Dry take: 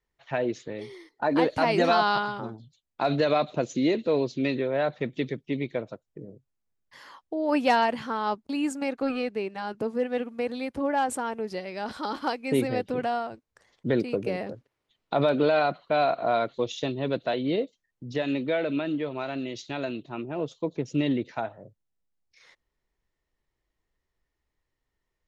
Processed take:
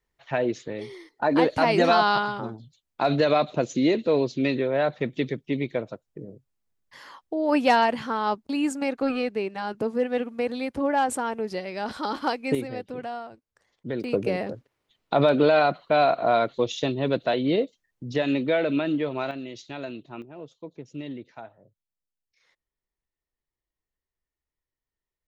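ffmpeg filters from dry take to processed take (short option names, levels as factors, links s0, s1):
-af "asetnsamples=n=441:p=0,asendcmd='12.55 volume volume -6dB;14.04 volume volume 3.5dB;19.31 volume volume -3.5dB;20.22 volume volume -10.5dB',volume=1.33"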